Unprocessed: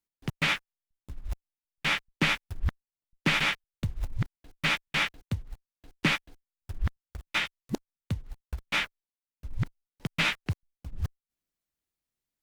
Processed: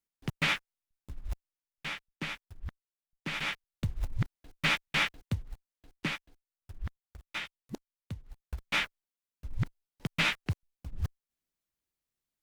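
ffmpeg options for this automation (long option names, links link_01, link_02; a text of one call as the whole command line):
ffmpeg -i in.wav -af "volume=16.5dB,afade=type=out:start_time=1.3:duration=0.65:silence=0.316228,afade=type=in:start_time=3.28:duration=0.61:silence=0.281838,afade=type=out:start_time=5.44:duration=0.67:silence=0.398107,afade=type=in:start_time=8.23:duration=0.42:silence=0.421697" out.wav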